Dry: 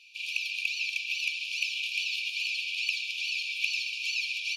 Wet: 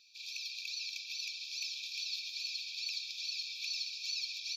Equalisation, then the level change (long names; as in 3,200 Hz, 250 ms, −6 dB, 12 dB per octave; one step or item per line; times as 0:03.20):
parametric band 2,300 Hz −11 dB 0.35 octaves
phaser with its sweep stopped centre 2,900 Hz, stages 6
0.0 dB